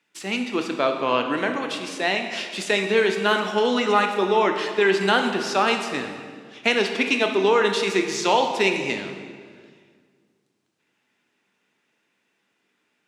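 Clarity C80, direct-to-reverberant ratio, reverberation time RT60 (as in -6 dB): 8.0 dB, 4.5 dB, 1.8 s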